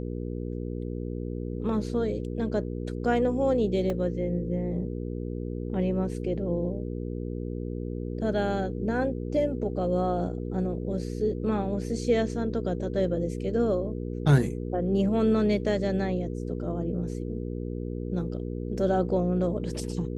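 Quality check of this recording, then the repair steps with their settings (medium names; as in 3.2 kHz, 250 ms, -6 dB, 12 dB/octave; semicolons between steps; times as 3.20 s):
hum 60 Hz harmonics 8 -33 dBFS
3.90 s: dropout 2.1 ms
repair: de-hum 60 Hz, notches 8; interpolate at 3.90 s, 2.1 ms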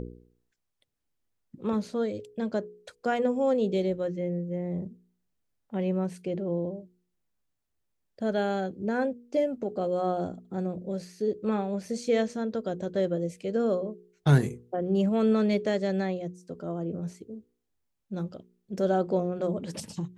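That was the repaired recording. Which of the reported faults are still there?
nothing left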